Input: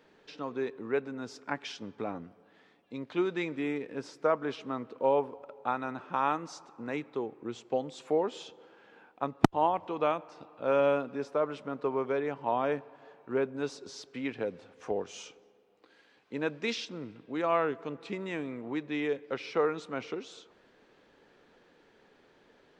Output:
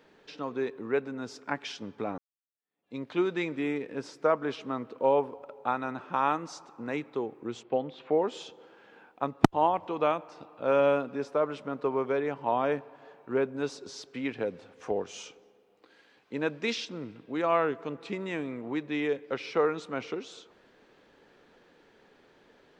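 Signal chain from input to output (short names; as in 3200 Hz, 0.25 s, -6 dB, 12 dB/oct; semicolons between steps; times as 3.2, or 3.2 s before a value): 2.18–2.95 fade in exponential; 7.63–8.22 LPF 3500 Hz 24 dB/oct; gain +2 dB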